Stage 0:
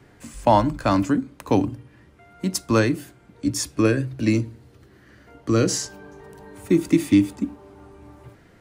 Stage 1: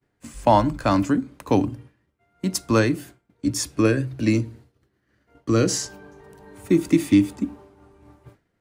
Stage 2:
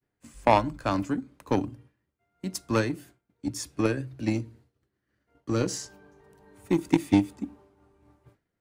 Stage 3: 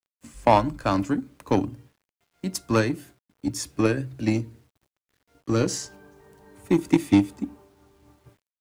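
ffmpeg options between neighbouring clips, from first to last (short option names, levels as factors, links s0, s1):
-af "agate=range=0.0224:threshold=0.0112:ratio=3:detection=peak"
-af "aeval=exprs='0.668*(cos(1*acos(clip(val(0)/0.668,-1,1)))-cos(1*PI/2))+0.15*(cos(3*acos(clip(val(0)/0.668,-1,1)))-cos(3*PI/2))':c=same"
-filter_complex "[0:a]asplit=2[s0][s1];[s1]asoftclip=type=hard:threshold=0.188,volume=0.562[s2];[s0][s2]amix=inputs=2:normalize=0,acrusher=bits=10:mix=0:aa=0.000001"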